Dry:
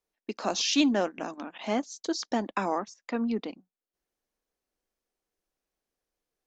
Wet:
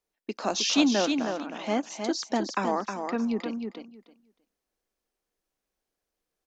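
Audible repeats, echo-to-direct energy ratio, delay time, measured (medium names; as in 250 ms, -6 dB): 2, -6.0 dB, 313 ms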